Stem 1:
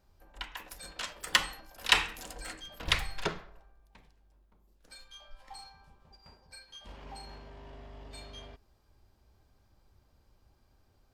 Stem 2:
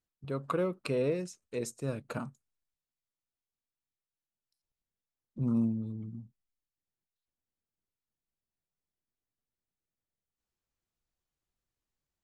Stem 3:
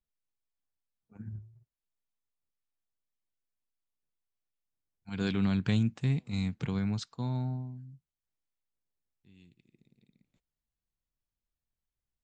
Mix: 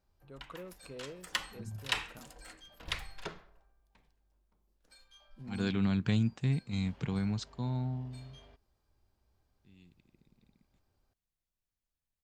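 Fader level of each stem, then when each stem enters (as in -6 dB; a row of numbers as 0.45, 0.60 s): -9.0, -16.0, -1.5 dB; 0.00, 0.00, 0.40 s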